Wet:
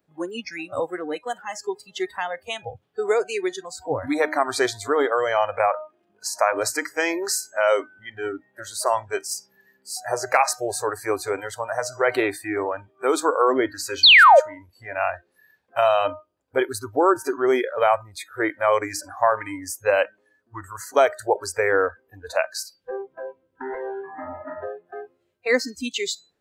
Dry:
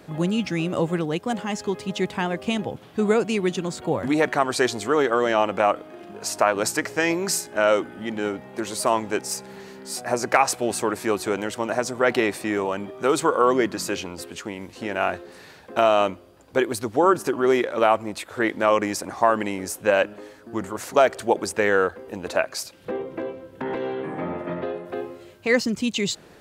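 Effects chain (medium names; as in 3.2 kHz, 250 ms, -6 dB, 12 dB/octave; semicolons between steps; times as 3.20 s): painted sound fall, 14.03–14.40 s, 500–4700 Hz -10 dBFS; de-hum 308.1 Hz, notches 25; spectral noise reduction 26 dB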